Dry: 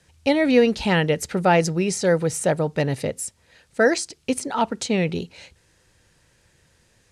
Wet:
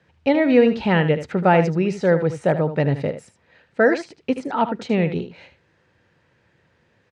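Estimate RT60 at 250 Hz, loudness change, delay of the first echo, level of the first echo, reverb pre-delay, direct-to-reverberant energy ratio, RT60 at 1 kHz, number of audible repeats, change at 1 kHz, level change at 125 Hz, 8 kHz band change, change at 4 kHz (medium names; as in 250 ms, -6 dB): no reverb, +2.0 dB, 77 ms, -11.0 dB, no reverb, no reverb, no reverb, 1, +2.0 dB, +3.0 dB, under -15 dB, -5.5 dB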